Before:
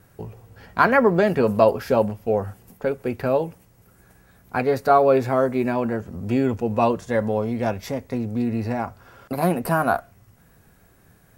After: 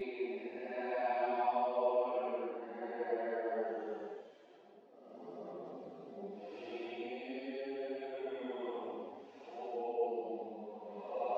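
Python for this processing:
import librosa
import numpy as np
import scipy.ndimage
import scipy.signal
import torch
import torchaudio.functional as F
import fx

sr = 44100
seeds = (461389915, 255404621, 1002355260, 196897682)

y = fx.level_steps(x, sr, step_db=17)
y = fx.cabinet(y, sr, low_hz=360.0, low_slope=24, high_hz=4700.0, hz=(710.0, 1400.0, 3500.0), db=(8, -8, 6))
y = fx.paulstretch(y, sr, seeds[0], factor=9.5, window_s=0.1, from_s=5.59)
y = fx.chorus_voices(y, sr, voices=4, hz=0.66, base_ms=10, depth_ms=5.0, mix_pct=55)
y = y * 10.0 ** (1.5 / 20.0)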